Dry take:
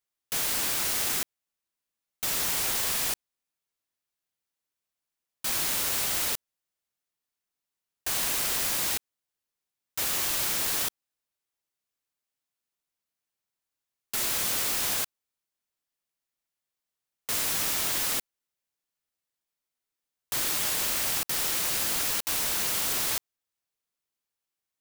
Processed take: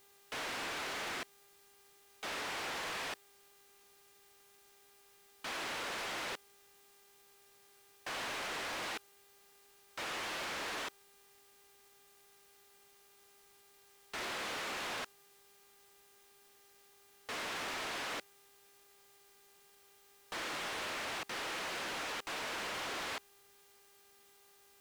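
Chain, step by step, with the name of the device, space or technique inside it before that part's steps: aircraft radio (BPF 300–2500 Hz; hard clip -40 dBFS, distortion -8 dB; buzz 400 Hz, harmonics 35, -71 dBFS -4 dB/oct; white noise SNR 22 dB); gain +2 dB

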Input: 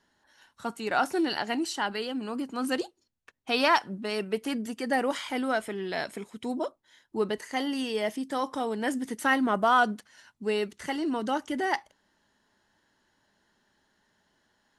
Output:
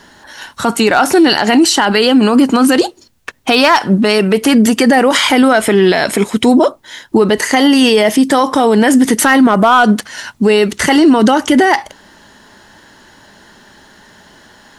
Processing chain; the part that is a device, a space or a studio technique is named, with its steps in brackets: loud club master (compressor 1.5:1, threshold -32 dBFS, peak gain reduction 5.5 dB; hard clip -20.5 dBFS, distortion -26 dB; maximiser +29 dB); gain -1 dB

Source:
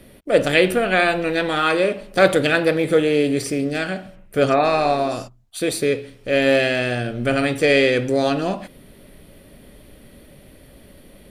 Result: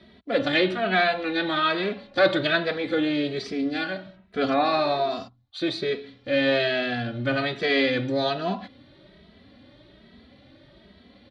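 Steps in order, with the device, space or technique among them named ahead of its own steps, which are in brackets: barber-pole flanger into a guitar amplifier (endless flanger 2.7 ms +1.2 Hz; soft clip -6.5 dBFS, distortion -25 dB; speaker cabinet 83–4500 Hz, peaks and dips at 150 Hz -7 dB, 470 Hz -9 dB, 2600 Hz -5 dB, 3900 Hz +8 dB)

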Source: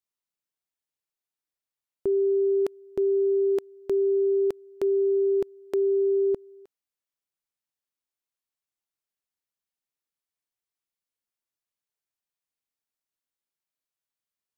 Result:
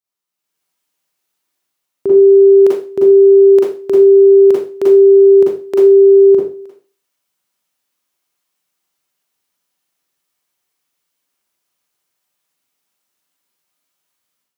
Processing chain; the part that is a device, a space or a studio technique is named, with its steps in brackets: far laptop microphone (reverb RT60 0.35 s, pre-delay 37 ms, DRR -5 dB; HPF 100 Hz; AGC gain up to 12 dB)

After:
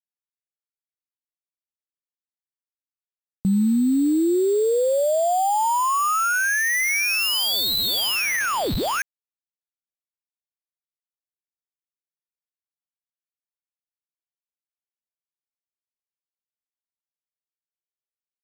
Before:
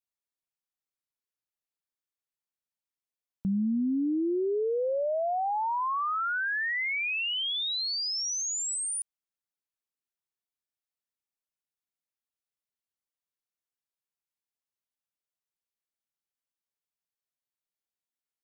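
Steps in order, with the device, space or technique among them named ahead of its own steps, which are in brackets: early companding sampler (sample-rate reducer 8000 Hz, jitter 0%; companded quantiser 8-bit); gain +8.5 dB

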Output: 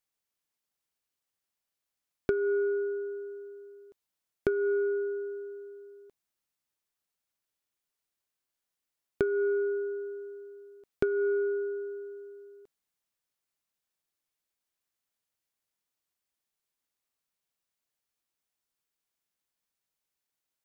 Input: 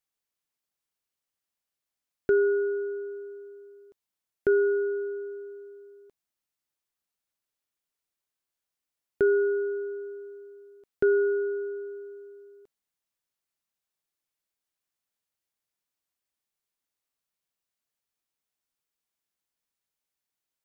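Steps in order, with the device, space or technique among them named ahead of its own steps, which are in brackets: drum-bus smash (transient shaper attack +8 dB, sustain +1 dB; compressor 10:1, threshold -23 dBFS, peak gain reduction 11.5 dB; soft clip -13.5 dBFS, distortion -23 dB)

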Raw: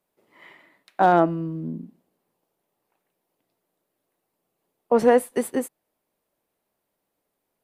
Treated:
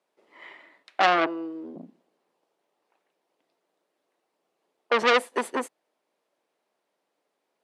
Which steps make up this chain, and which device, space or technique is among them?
1.26–1.76 HPF 300 Hz 24 dB/oct; public-address speaker with an overloaded transformer (core saturation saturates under 2300 Hz; BPF 330–6300 Hz); gain +3 dB

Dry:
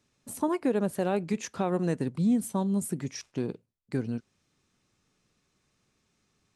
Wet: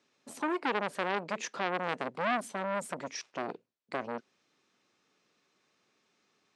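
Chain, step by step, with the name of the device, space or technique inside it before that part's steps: public-address speaker with an overloaded transformer (core saturation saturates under 1600 Hz; BPF 320–5200 Hz); gain +3 dB

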